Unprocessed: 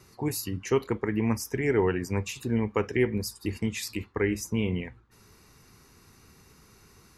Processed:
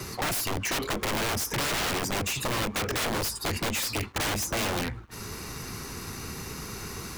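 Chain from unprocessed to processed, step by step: wrapped overs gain 28.5 dB; sample leveller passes 3; three-band squash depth 40%; gain +2.5 dB

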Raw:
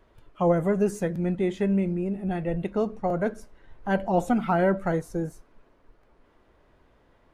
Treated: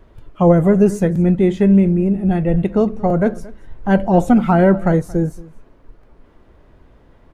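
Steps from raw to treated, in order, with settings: low shelf 340 Hz +9 dB; on a send: echo 0.227 s -21.5 dB; on the sum: gain +6 dB

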